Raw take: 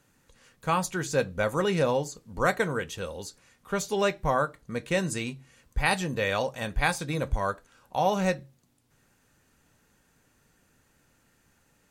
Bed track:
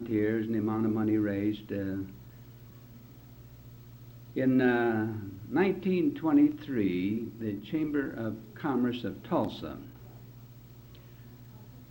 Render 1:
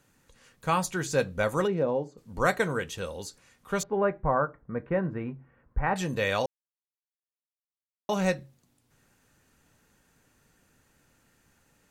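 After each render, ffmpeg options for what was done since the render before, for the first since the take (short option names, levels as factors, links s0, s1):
-filter_complex "[0:a]asplit=3[s0][s1][s2];[s0]afade=t=out:st=1.66:d=0.02[s3];[s1]bandpass=f=340:t=q:w=0.73,afade=t=in:st=1.66:d=0.02,afade=t=out:st=2.17:d=0.02[s4];[s2]afade=t=in:st=2.17:d=0.02[s5];[s3][s4][s5]amix=inputs=3:normalize=0,asettb=1/sr,asplit=3[s6][s7][s8];[s6]atrim=end=3.834[s9];[s7]atrim=start=3.83:end=5.96,asetpts=PTS-STARTPTS,afade=t=in:d=0.004:c=qsin,afade=t=out:st=2.126:d=0.004:c=qsin,lowpass=f=1600:w=0.5412,lowpass=f=1600:w=1.3066[s10];[s8]atrim=start=5.956[s11];[s9][s10]acrossfade=d=0.004:c1=hsin:c2=qsin[s12];[s12][s11]acrossfade=d=0.004:c1=qsin:c2=hsin,asplit=3[s13][s14][s15];[s13]atrim=end=6.46,asetpts=PTS-STARTPTS,afade=t=out:st=6.456:d=0.004:c=hsin[s16];[s14]atrim=start=6.46:end=8.09,asetpts=PTS-STARTPTS,volume=0[s17];[s15]atrim=start=8.09,asetpts=PTS-STARTPTS,afade=t=in:d=0.004:c=hsin[s18];[s16][s17][s18]concat=n=3:v=0:a=1"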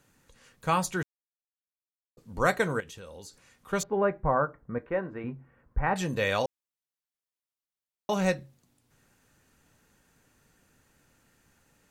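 -filter_complex "[0:a]asettb=1/sr,asplit=3[s0][s1][s2];[s0]atrim=end=2.804[s3];[s1]atrim=start=2.8:end=3.73,asetpts=PTS-STARTPTS,afade=t=in:d=0.004:c=qsin,afade=t=out:st=0.926:d=0.004:c=qsin,acompressor=threshold=0.00708:ratio=4:attack=3.2:release=140:knee=1:detection=peak[s4];[s2]atrim=start=3.726[s5];[s3][s4]acrossfade=d=0.004:c1=hsin:c2=qsin[s6];[s6][s5]acrossfade=d=0.004:c1=qsin:c2=hsin,asettb=1/sr,asplit=3[s7][s8][s9];[s7]atrim=end=4.784[s10];[s8]atrim=start=4.78:end=5.24,asetpts=PTS-STARTPTS,afade=t=in:d=0.004:c=qsin,afade=t=out:st=0.456:d=0.004:c=qsin,equalizer=f=140:w=1:g=-12.5[s11];[s9]atrim=start=5.236[s12];[s10][s11]acrossfade=d=0.004:c1=hsin:c2=qsin[s13];[s13][s12]acrossfade=d=0.004:c1=qsin:c2=hsin,asplit=3[s14][s15][s16];[s14]atrim=end=1.03,asetpts=PTS-STARTPTS,afade=t=out:st=1.026:d=0.004:c=hsin[s17];[s15]atrim=start=1.03:end=2.17,asetpts=PTS-STARTPTS,volume=0[s18];[s16]atrim=start=2.17,asetpts=PTS-STARTPTS,afade=t=in:d=0.004:c=hsin[s19];[s17][s18][s19]concat=n=3:v=0:a=1"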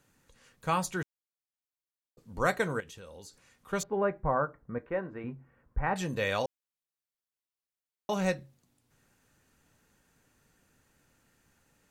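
-af "volume=0.708"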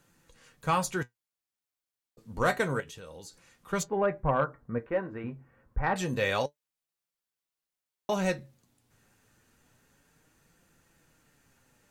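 -af "flanger=delay=5.8:depth=3.7:regen=63:speed=0.28:shape=sinusoidal,aeval=exprs='0.141*sin(PI/2*1.41*val(0)/0.141)':c=same"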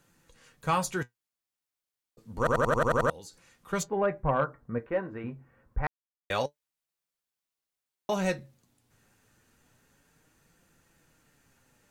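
-filter_complex "[0:a]asplit=11[s0][s1][s2][s3][s4][s5][s6][s7][s8][s9][s10];[s0]atrim=end=2.472[s11];[s1]atrim=start=2.378:end=2.472[s12];[s2]atrim=start=2.378:end=2.472[s13];[s3]atrim=start=2.378:end=2.472[s14];[s4]atrim=start=2.378:end=2.472[s15];[s5]atrim=start=2.378:end=2.472[s16];[s6]atrim=start=2.378:end=2.472[s17];[s7]atrim=start=2.378:end=2.472[s18];[s8]atrim=start=3.098:end=5.87,asetpts=PTS-STARTPTS,afade=t=out:st=2.768:d=0.004:c=hsin[s19];[s9]atrim=start=5.87:end=6.3,asetpts=PTS-STARTPTS,volume=0[s20];[s10]atrim=start=6.3,asetpts=PTS-STARTPTS,afade=t=in:d=0.004:c=hsin[s21];[s11][s12]acrossfade=d=0.004:c1=hsin:c2=hsin[s22];[s22][s13]acrossfade=d=0.004:c1=hsin:c2=hsin[s23];[s23][s14]acrossfade=d=0.004:c1=hsin:c2=hsin[s24];[s24][s15]acrossfade=d=0.004:c1=hsin:c2=hsin[s25];[s25][s16]acrossfade=d=0.004:c1=hsin:c2=hsin[s26];[s26][s17]acrossfade=d=0.004:c1=hsin:c2=hsin[s27];[s27][s18]acrossfade=d=0.004:c1=hsin:c2=hsin[s28];[s19][s20][s21]concat=n=3:v=0:a=1[s29];[s28][s29]acrossfade=d=0.004:c1=hsin:c2=hsin"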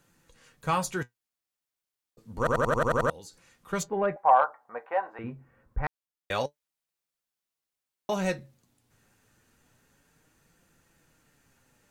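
-filter_complex "[0:a]asettb=1/sr,asplit=3[s0][s1][s2];[s0]atrim=end=4.164[s3];[s1]atrim=start=4.16:end=5.19,asetpts=PTS-STARTPTS,afade=t=in:d=0.004:c=qsin,afade=t=out:st=1.026:d=0.004:c=qsin,highpass=f=790:t=q:w=6.4[s4];[s2]atrim=start=5.186[s5];[s3][s4]acrossfade=d=0.004:c1=hsin:c2=qsin[s6];[s6][s5]acrossfade=d=0.004:c1=qsin:c2=hsin"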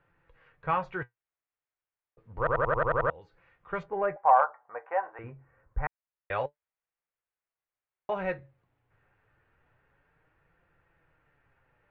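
-af "lowpass=f=2300:w=0.5412,lowpass=f=2300:w=1.3066,equalizer=f=230:t=o:w=0.78:g=-14.5"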